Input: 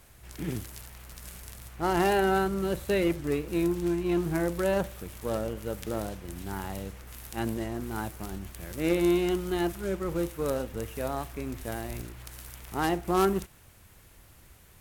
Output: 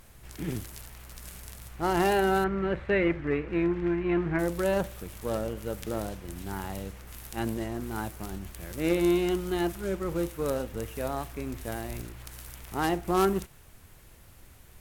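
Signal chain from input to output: added noise brown -55 dBFS; 2.44–4.39 synth low-pass 2000 Hz, resonance Q 2.2

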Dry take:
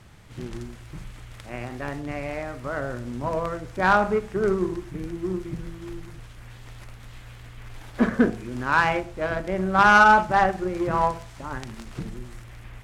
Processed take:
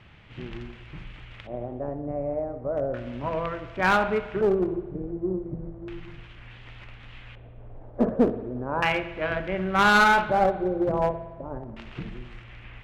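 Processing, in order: LFO low-pass square 0.34 Hz 590–2800 Hz; one-sided clip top -17 dBFS; spring tank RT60 1.4 s, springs 55 ms, chirp 35 ms, DRR 12.5 dB; gain -2.5 dB

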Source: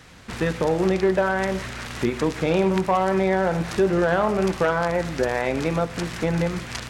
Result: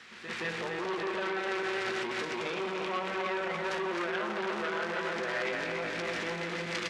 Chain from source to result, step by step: regenerating reverse delay 0.148 s, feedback 76%, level -2.5 dB; reverse echo 0.172 s -13 dB; limiter -16 dBFS, peak gain reduction 11 dB; LPF 2300 Hz 12 dB/oct; bell 840 Hz -3 dB 0.76 oct; small resonant body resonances 210/360 Hz, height 10 dB, ringing for 85 ms; added harmonics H 5 -13 dB, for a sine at -9 dBFS; differentiator; doubler 18 ms -11 dB; gain +6 dB

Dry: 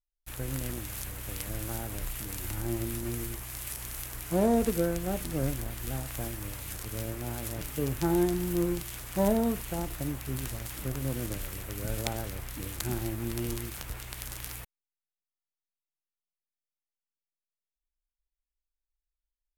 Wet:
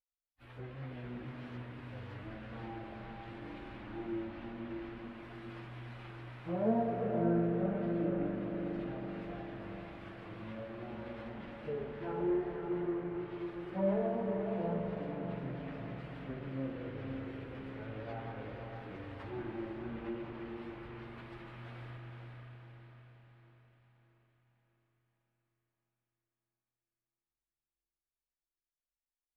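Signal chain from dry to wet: tracing distortion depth 0.36 ms; treble ducked by the level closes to 2000 Hz, closed at -25.5 dBFS; HPF 190 Hz 6 dB/oct; flange 1.2 Hz, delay 3.7 ms, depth 7 ms, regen -21%; plain phase-vocoder stretch 1.5×; air absorption 450 m; diffused feedback echo 0.495 s, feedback 53%, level -4.5 dB; on a send at -3.5 dB: reverb RT60 2.5 s, pre-delay 41 ms

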